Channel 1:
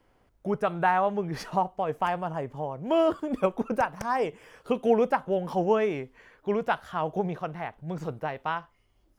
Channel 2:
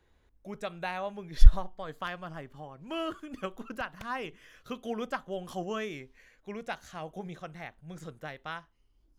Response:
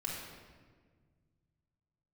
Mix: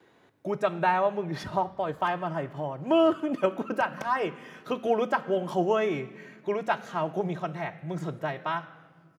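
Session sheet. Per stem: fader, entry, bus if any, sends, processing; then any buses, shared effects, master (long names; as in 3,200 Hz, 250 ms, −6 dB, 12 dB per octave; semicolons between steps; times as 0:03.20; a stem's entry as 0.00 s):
−1.0 dB, 0.00 s, no send, no processing
−2.5 dB, 2.5 ms, send −9 dB, automatic gain control gain up to 5 dB; multiband upward and downward compressor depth 40%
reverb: on, RT60 1.6 s, pre-delay 3 ms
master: high-pass filter 130 Hz 24 dB per octave; high-shelf EQ 4,100 Hz −7.5 dB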